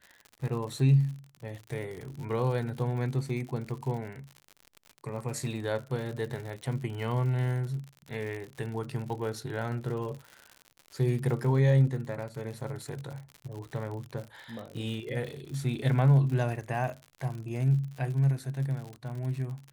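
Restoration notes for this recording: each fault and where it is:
crackle 84/s -37 dBFS

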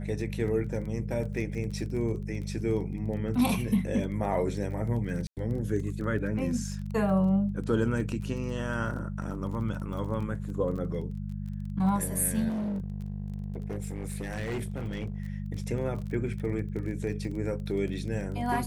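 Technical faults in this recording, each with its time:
crackle 21/s -37 dBFS
hum 50 Hz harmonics 4 -35 dBFS
5.27–5.37 gap 98 ms
12.48–15.2 clipped -29 dBFS

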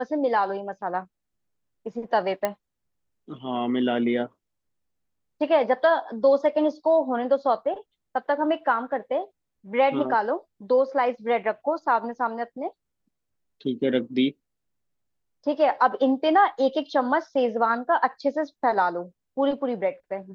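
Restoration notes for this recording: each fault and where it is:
2.45 pop -11 dBFS

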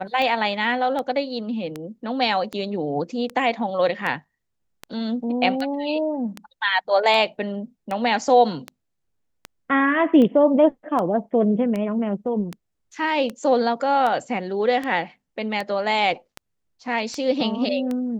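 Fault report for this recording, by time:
tick 78 rpm -15 dBFS

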